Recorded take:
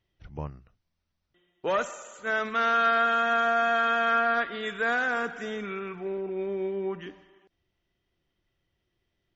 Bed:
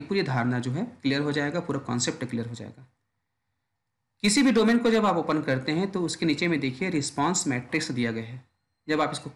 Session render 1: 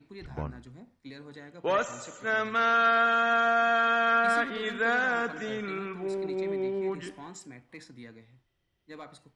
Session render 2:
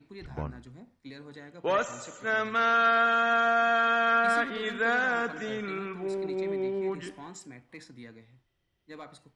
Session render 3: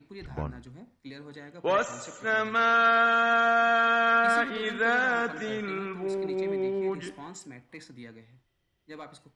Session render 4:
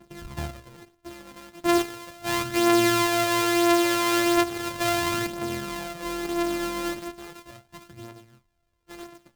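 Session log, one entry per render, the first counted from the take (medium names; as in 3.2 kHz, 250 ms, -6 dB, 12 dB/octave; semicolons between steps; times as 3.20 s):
add bed -20 dB
no audible change
trim +1.5 dB
sorted samples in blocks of 128 samples; phaser 0.37 Hz, delay 3.9 ms, feedback 46%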